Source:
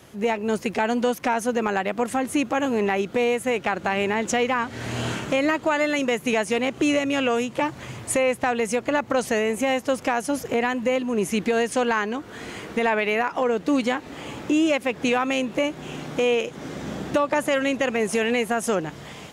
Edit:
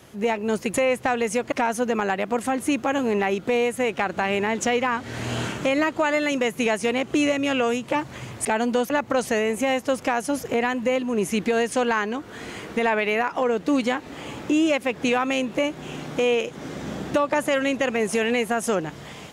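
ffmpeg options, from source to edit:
ffmpeg -i in.wav -filter_complex "[0:a]asplit=5[link_01][link_02][link_03][link_04][link_05];[link_01]atrim=end=0.742[link_06];[link_02]atrim=start=8.118:end=8.902[link_07];[link_03]atrim=start=1.188:end=8.122[link_08];[link_04]atrim=start=0.738:end=1.192[link_09];[link_05]atrim=start=8.898[link_10];[link_06][link_07]acrossfade=duration=0.004:curve1=hsin:curve2=hsin[link_11];[link_11][link_08]acrossfade=duration=0.004:curve1=hsin:curve2=hsin[link_12];[link_12][link_09]acrossfade=duration=0.004:curve1=hsin:curve2=hsin[link_13];[link_13][link_10]acrossfade=duration=0.004:curve1=hsin:curve2=hsin" out.wav

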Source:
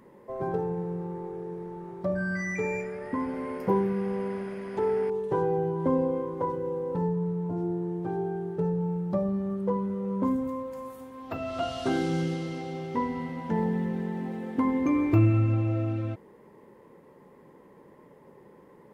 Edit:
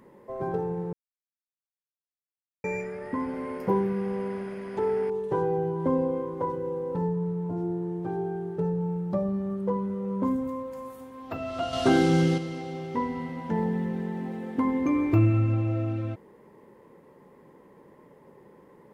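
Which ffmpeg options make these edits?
ffmpeg -i in.wav -filter_complex "[0:a]asplit=5[link_01][link_02][link_03][link_04][link_05];[link_01]atrim=end=0.93,asetpts=PTS-STARTPTS,afade=type=out:start_time=0.926:duration=0.004:curve=hsin[link_06];[link_02]atrim=start=0.93:end=2.64,asetpts=PTS-STARTPTS,volume=0[link_07];[link_03]atrim=start=2.64:end=11.732,asetpts=PTS-STARTPTS,afade=type=in:duration=0.004:curve=hsin[link_08];[link_04]atrim=start=11.728:end=12.382,asetpts=PTS-STARTPTS,volume=6.5dB[link_09];[link_05]atrim=start=12.378[link_10];[link_06][link_07][link_08]concat=n=3:v=0:a=1[link_11];[link_11][link_09]acrossfade=duration=0.004:curve1=hsin:curve2=hsin[link_12];[link_12][link_10]acrossfade=duration=0.004:curve1=hsin:curve2=hsin" out.wav

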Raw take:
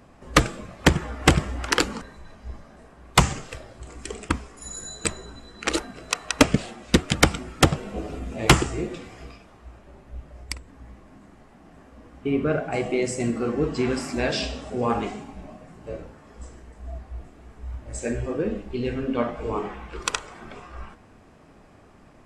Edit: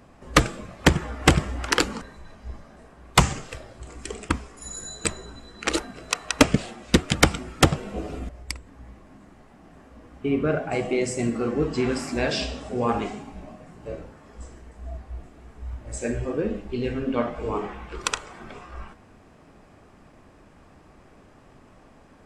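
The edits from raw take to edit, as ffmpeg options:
ffmpeg -i in.wav -filter_complex "[0:a]asplit=2[link_01][link_02];[link_01]atrim=end=8.292[link_03];[link_02]atrim=start=10.298[link_04];[link_03][link_04]acrossfade=duration=0.004:curve1=hsin:curve2=hsin" out.wav

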